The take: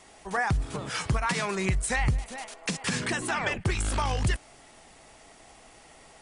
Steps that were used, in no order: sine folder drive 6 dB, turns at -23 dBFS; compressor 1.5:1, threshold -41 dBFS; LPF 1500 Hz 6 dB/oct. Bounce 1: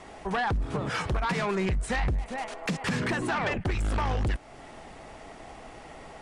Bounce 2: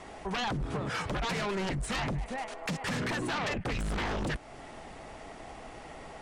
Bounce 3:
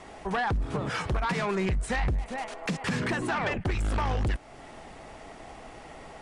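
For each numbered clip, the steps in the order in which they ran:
LPF > compressor > sine folder; LPF > sine folder > compressor; compressor > LPF > sine folder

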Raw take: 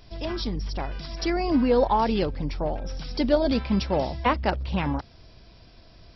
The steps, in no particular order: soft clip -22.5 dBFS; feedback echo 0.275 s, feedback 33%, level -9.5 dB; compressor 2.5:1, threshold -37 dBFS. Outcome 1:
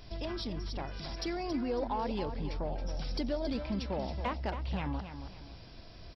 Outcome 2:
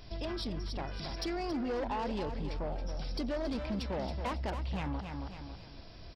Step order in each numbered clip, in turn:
compressor > soft clip > feedback echo; soft clip > feedback echo > compressor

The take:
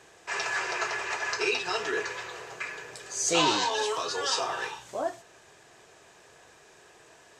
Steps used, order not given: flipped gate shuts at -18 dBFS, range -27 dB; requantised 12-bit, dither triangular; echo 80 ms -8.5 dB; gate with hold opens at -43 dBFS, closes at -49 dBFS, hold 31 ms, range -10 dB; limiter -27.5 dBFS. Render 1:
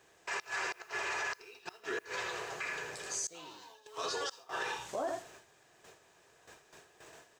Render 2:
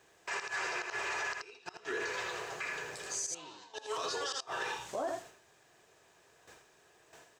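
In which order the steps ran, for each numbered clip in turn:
echo > flipped gate > limiter > requantised > gate with hold; requantised > flipped gate > gate with hold > echo > limiter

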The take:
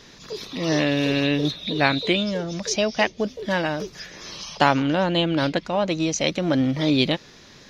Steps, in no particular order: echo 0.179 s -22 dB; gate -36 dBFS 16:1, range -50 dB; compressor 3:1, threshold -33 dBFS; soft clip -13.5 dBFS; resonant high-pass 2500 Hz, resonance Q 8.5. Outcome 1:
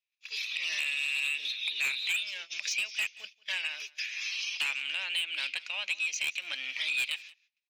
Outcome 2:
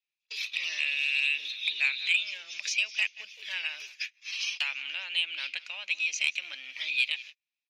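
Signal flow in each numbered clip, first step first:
resonant high-pass > soft clip > gate > compressor > echo; echo > gate > compressor > resonant high-pass > soft clip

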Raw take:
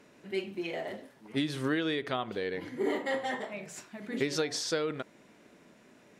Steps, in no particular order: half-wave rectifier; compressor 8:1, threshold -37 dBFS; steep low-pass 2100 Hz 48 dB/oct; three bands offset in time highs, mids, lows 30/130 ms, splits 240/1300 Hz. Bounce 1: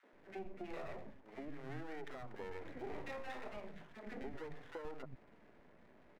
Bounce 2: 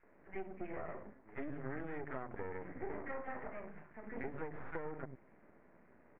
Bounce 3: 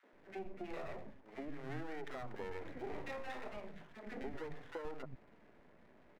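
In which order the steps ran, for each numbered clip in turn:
steep low-pass > compressor > half-wave rectifier > three bands offset in time; three bands offset in time > half-wave rectifier > steep low-pass > compressor; steep low-pass > half-wave rectifier > compressor > three bands offset in time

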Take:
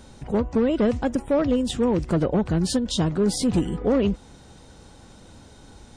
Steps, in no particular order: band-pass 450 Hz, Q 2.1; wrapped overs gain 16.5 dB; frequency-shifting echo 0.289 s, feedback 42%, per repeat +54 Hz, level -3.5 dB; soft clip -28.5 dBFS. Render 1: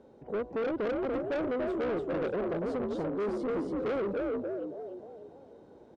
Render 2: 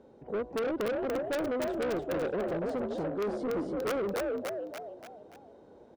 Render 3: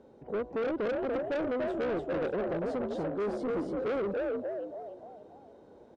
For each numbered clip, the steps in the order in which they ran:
frequency-shifting echo > band-pass > soft clip > wrapped overs; band-pass > wrapped overs > frequency-shifting echo > soft clip; band-pass > frequency-shifting echo > soft clip > wrapped overs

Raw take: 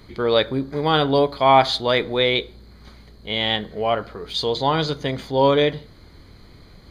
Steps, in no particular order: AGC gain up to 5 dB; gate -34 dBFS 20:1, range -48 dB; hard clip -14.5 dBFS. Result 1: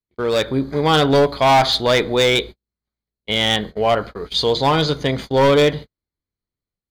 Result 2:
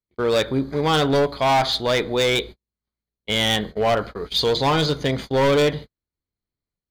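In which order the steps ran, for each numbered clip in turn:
hard clip > gate > AGC; gate > AGC > hard clip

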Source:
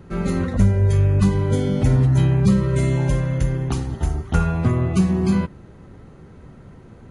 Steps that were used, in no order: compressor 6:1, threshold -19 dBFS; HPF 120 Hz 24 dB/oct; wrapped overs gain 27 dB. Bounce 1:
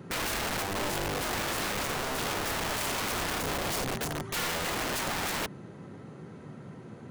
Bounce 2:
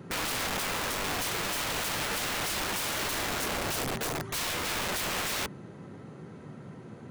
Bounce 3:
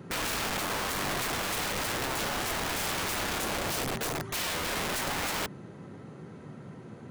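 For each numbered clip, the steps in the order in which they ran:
compressor > HPF > wrapped overs; HPF > wrapped overs > compressor; HPF > compressor > wrapped overs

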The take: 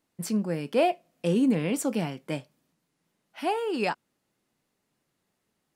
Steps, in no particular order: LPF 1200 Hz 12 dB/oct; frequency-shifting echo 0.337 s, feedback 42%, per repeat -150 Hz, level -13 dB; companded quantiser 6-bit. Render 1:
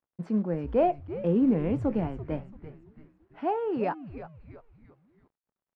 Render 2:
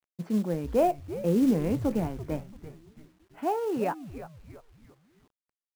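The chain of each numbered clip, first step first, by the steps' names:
frequency-shifting echo > companded quantiser > LPF; frequency-shifting echo > LPF > companded quantiser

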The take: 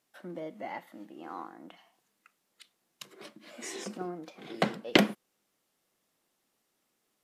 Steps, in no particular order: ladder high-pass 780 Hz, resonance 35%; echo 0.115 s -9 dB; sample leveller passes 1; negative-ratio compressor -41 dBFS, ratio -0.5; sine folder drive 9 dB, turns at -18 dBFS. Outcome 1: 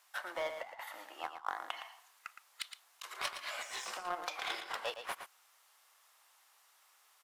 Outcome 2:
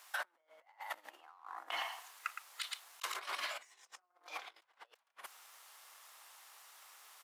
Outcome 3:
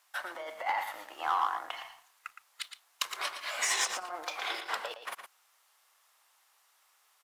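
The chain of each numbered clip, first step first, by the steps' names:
ladder high-pass > sample leveller > sine folder > negative-ratio compressor > echo; echo > sine folder > negative-ratio compressor > sample leveller > ladder high-pass; negative-ratio compressor > ladder high-pass > sine folder > sample leveller > echo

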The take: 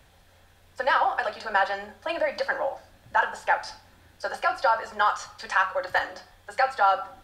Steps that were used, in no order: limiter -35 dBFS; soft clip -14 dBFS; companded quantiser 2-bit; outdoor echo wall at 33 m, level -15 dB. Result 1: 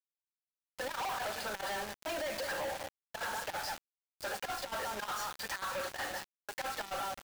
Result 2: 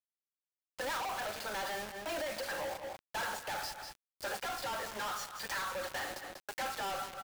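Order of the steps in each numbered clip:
outdoor echo > companded quantiser > limiter > soft clip; soft clip > companded quantiser > outdoor echo > limiter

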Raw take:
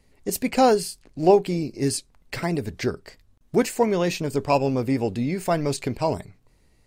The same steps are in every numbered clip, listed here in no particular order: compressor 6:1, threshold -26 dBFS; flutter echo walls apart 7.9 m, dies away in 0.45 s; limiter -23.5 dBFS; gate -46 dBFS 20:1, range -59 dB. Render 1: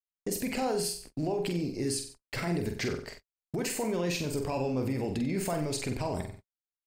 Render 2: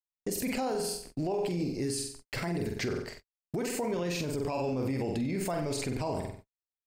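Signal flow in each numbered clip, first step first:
limiter > compressor > flutter echo > gate; flutter echo > gate > limiter > compressor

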